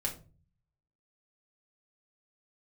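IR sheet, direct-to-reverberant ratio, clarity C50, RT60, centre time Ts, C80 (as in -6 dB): -1.5 dB, 11.5 dB, 0.35 s, 15 ms, 17.0 dB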